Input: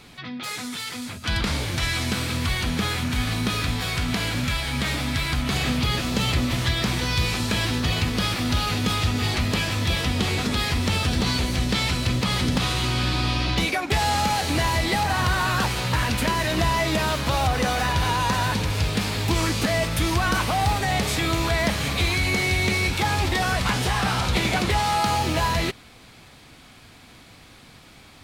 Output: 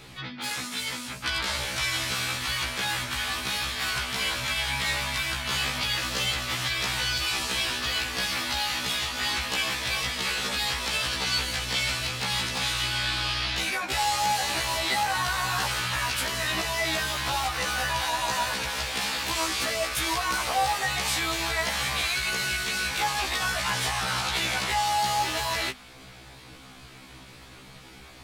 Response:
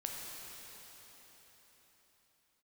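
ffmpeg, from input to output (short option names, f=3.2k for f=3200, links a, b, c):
-filter_complex "[0:a]bandreject=f=50:t=h:w=6,bandreject=f=100:t=h:w=6,bandreject=f=150:t=h:w=6,bandreject=f=200:t=h:w=6,bandreject=f=250:t=h:w=6,asplit=2[a][b];[b]asetrate=29433,aresample=44100,atempo=1.49831,volume=-9dB[c];[a][c]amix=inputs=2:normalize=0,acrossover=split=600|4300[d][e][f];[d]acompressor=threshold=-39dB:ratio=8[g];[e]alimiter=limit=-21dB:level=0:latency=1[h];[g][h][f]amix=inputs=3:normalize=0,afftfilt=real='re*1.73*eq(mod(b,3),0)':imag='im*1.73*eq(mod(b,3),0)':win_size=2048:overlap=0.75,volume=3dB"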